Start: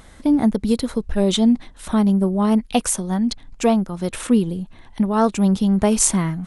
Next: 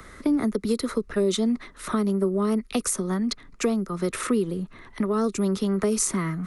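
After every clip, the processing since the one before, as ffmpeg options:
-filter_complex "[0:a]acrossover=split=280|390|3800[a][b][c][d];[c]acompressor=threshold=-32dB:ratio=6[e];[a][b][e][d]amix=inputs=4:normalize=0,equalizer=f=400:t=o:w=0.33:g=8,equalizer=f=800:t=o:w=0.33:g=-8,equalizer=f=1.25k:t=o:w=0.33:g=11,equalizer=f=2k:t=o:w=0.33:g=6,equalizer=f=3.15k:t=o:w=0.33:g=-5,equalizer=f=8k:t=o:w=0.33:g=-3,acrossover=split=120|390[f][g][h];[f]acompressor=threshold=-47dB:ratio=4[i];[g]acompressor=threshold=-27dB:ratio=4[j];[h]acompressor=threshold=-23dB:ratio=4[k];[i][j][k]amix=inputs=3:normalize=0"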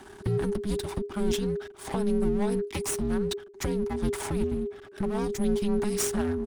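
-af "aecho=1:1:5.8:0.51,aeval=exprs='max(val(0),0)':c=same,afreqshift=-410,volume=-1dB"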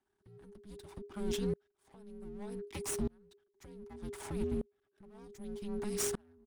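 -af "aeval=exprs='val(0)*pow(10,-34*if(lt(mod(-0.65*n/s,1),2*abs(-0.65)/1000),1-mod(-0.65*n/s,1)/(2*abs(-0.65)/1000),(mod(-0.65*n/s,1)-2*abs(-0.65)/1000)/(1-2*abs(-0.65)/1000))/20)':c=same,volume=-3.5dB"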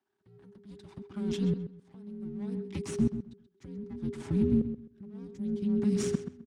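-filter_complex "[0:a]highpass=150,lowpass=6.1k,asubboost=boost=10:cutoff=240,asplit=2[a][b];[b]adelay=130,lowpass=f=3.8k:p=1,volume=-10dB,asplit=2[c][d];[d]adelay=130,lowpass=f=3.8k:p=1,volume=0.22,asplit=2[e][f];[f]adelay=130,lowpass=f=3.8k:p=1,volume=0.22[g];[a][c][e][g]amix=inputs=4:normalize=0"

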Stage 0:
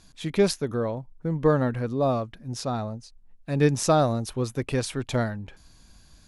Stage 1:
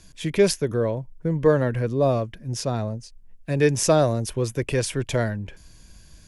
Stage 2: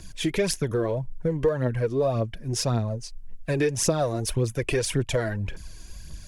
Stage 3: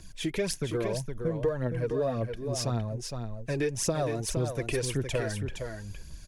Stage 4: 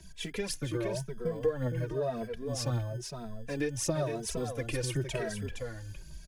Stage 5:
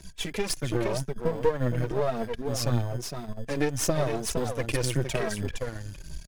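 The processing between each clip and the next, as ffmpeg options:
-filter_complex "[0:a]equalizer=f=250:t=o:w=0.33:g=-6,equalizer=f=800:t=o:w=0.33:g=-9,equalizer=f=1.25k:t=o:w=0.33:g=-9,equalizer=f=4k:t=o:w=0.33:g=-7,acrossover=split=330|970[a][b][c];[a]alimiter=level_in=1dB:limit=-24dB:level=0:latency=1,volume=-1dB[d];[d][b][c]amix=inputs=3:normalize=0,volume=5.5dB"
-af "aphaser=in_gain=1:out_gain=1:delay=3.1:decay=0.56:speed=1.8:type=triangular,acompressor=threshold=-25dB:ratio=4,volume=3dB"
-af "aecho=1:1:464:0.473,volume=-5.5dB"
-filter_complex "[0:a]acrossover=split=120|1500[a][b][c];[a]acrusher=samples=27:mix=1:aa=0.000001[d];[d][b][c]amix=inputs=3:normalize=0,asplit=2[e][f];[f]adelay=2.7,afreqshift=0.97[g];[e][g]amix=inputs=2:normalize=1"
-af "aeval=exprs='if(lt(val(0),0),0.251*val(0),val(0))':c=same,volume=8.5dB"

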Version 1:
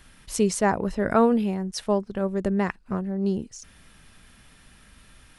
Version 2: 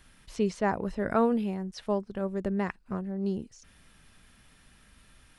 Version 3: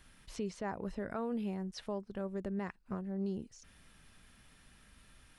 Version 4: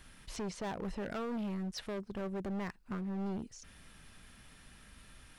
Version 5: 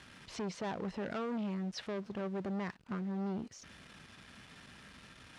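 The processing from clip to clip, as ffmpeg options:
-filter_complex "[0:a]acrossover=split=4800[a][b];[b]acompressor=threshold=-52dB:ratio=4:attack=1:release=60[c];[a][c]amix=inputs=2:normalize=0,volume=-5.5dB"
-af "alimiter=level_in=1.5dB:limit=-24dB:level=0:latency=1:release=288,volume=-1.5dB,volume=-3dB"
-af "asoftclip=type=hard:threshold=-39.5dB,volume=4.5dB"
-af "aeval=exprs='val(0)+0.5*0.00251*sgn(val(0))':c=same,highpass=100,lowpass=5.7k"

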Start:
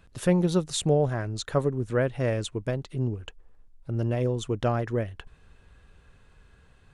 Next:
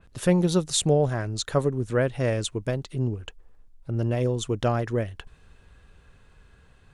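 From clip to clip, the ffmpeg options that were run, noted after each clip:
-af "adynamicequalizer=threshold=0.00631:dfrequency=3300:dqfactor=0.7:tfrequency=3300:tqfactor=0.7:attack=5:release=100:ratio=0.375:range=2.5:mode=boostabove:tftype=highshelf,volume=1.5dB"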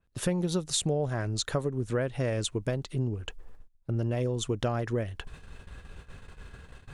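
-af "areverse,acompressor=mode=upward:threshold=-34dB:ratio=2.5,areverse,agate=range=-18dB:threshold=-44dB:ratio=16:detection=peak,acompressor=threshold=-25dB:ratio=6"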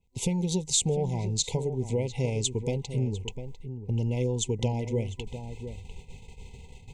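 -filter_complex "[0:a]superequalizer=6b=0.398:8b=0.316:15b=1.78:16b=0.562,afftfilt=real='re*(1-between(b*sr/4096,1000,2000))':imag='im*(1-between(b*sr/4096,1000,2000))':win_size=4096:overlap=0.75,asplit=2[a][b];[b]adelay=699.7,volume=-10dB,highshelf=f=4k:g=-15.7[c];[a][c]amix=inputs=2:normalize=0,volume=2dB"

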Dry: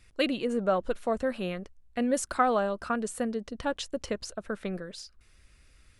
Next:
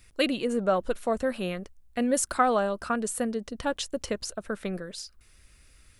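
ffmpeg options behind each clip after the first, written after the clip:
-af "highshelf=f=9k:g=11.5,volume=1.5dB"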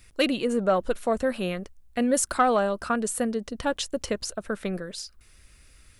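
-af "asoftclip=type=tanh:threshold=-11dB,volume=2.5dB"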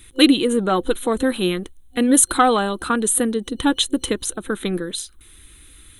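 -af "superequalizer=6b=2.51:8b=0.355:13b=2.51:14b=0.316:16b=2.51,volume=6dB"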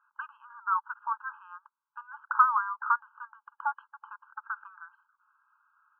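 -af "asuperpass=centerf=680:order=12:qfactor=0.56,afftfilt=real='re*eq(mod(floor(b*sr/1024/820),2),1)':imag='im*eq(mod(floor(b*sr/1024/820),2),1)':win_size=1024:overlap=0.75,volume=-2dB"

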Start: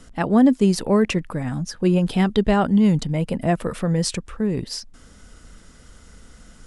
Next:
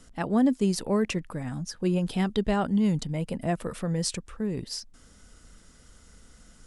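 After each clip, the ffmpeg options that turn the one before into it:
-af "bass=f=250:g=0,treble=f=4k:g=4,volume=-7.5dB"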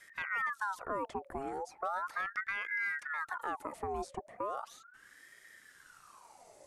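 -filter_complex "[0:a]acrossover=split=97|330|1800[a][b][c][d];[a]acompressor=threshold=-55dB:ratio=4[e];[b]acompressor=threshold=-35dB:ratio=4[f];[c]acompressor=threshold=-40dB:ratio=4[g];[d]acompressor=threshold=-52dB:ratio=4[h];[e][f][g][h]amix=inputs=4:normalize=0,equalizer=f=2.8k:t=o:w=2.1:g=-6.5,aeval=exprs='val(0)*sin(2*PI*1200*n/s+1200*0.55/0.37*sin(2*PI*0.37*n/s))':c=same"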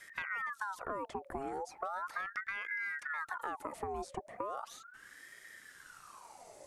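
-af "acompressor=threshold=-39dB:ratio=6,volume=3.5dB"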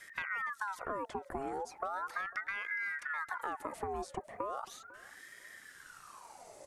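-af "aecho=1:1:499|998:0.0891|0.0232,volume=1dB"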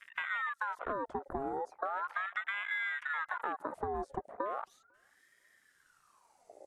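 -af "afwtdn=0.00708,volume=2dB"

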